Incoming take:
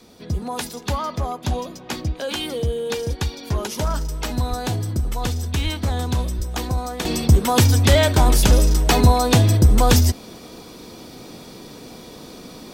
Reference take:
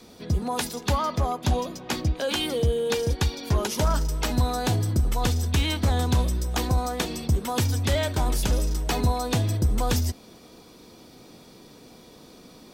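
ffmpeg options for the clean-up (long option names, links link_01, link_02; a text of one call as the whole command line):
ffmpeg -i in.wav -filter_complex "[0:a]asplit=3[link_01][link_02][link_03];[link_01]afade=type=out:start_time=4.49:duration=0.02[link_04];[link_02]highpass=frequency=140:width=0.5412,highpass=frequency=140:width=1.3066,afade=type=in:start_time=4.49:duration=0.02,afade=type=out:start_time=4.61:duration=0.02[link_05];[link_03]afade=type=in:start_time=4.61:duration=0.02[link_06];[link_04][link_05][link_06]amix=inputs=3:normalize=0,asplit=3[link_07][link_08][link_09];[link_07]afade=type=out:start_time=5.63:duration=0.02[link_10];[link_08]highpass=frequency=140:width=0.5412,highpass=frequency=140:width=1.3066,afade=type=in:start_time=5.63:duration=0.02,afade=type=out:start_time=5.75:duration=0.02[link_11];[link_09]afade=type=in:start_time=5.75:duration=0.02[link_12];[link_10][link_11][link_12]amix=inputs=3:normalize=0,asplit=3[link_13][link_14][link_15];[link_13]afade=type=out:start_time=6.37:duration=0.02[link_16];[link_14]highpass=frequency=140:width=0.5412,highpass=frequency=140:width=1.3066,afade=type=in:start_time=6.37:duration=0.02,afade=type=out:start_time=6.49:duration=0.02[link_17];[link_15]afade=type=in:start_time=6.49:duration=0.02[link_18];[link_16][link_17][link_18]amix=inputs=3:normalize=0,asetnsamples=nb_out_samples=441:pad=0,asendcmd='7.05 volume volume -9.5dB',volume=0dB" out.wav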